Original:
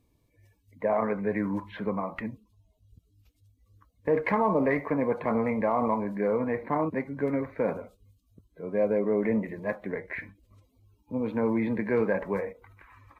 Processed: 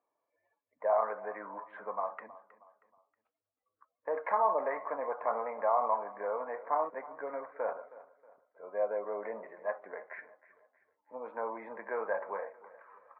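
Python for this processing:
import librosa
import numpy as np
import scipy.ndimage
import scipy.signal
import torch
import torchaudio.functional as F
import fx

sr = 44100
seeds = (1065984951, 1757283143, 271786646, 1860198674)

p1 = scipy.signal.sosfilt(scipy.signal.cheby1(2, 1.0, [640.0, 1400.0], 'bandpass', fs=sr, output='sos'), x)
y = p1 + fx.echo_feedback(p1, sr, ms=317, feedback_pct=39, wet_db=-18.0, dry=0)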